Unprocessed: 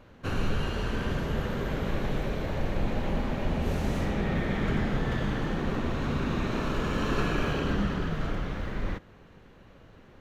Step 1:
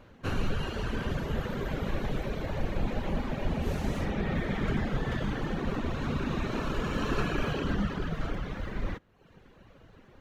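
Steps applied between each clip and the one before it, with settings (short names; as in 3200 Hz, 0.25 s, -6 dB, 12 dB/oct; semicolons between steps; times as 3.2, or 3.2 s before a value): reverb removal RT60 0.78 s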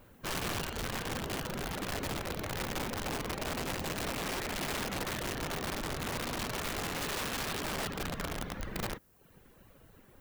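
added noise violet -64 dBFS; wrapped overs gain 26.5 dB; gain -4 dB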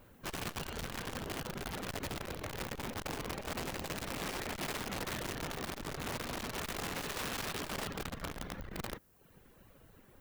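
core saturation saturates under 100 Hz; gain -1.5 dB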